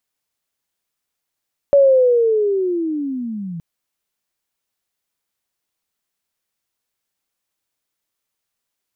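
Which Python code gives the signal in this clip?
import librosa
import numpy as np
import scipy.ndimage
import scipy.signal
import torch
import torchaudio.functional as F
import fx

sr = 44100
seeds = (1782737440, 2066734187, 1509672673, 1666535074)

y = fx.chirp(sr, length_s=1.87, from_hz=570.0, to_hz=160.0, law='linear', from_db=-7.0, to_db=-25.5)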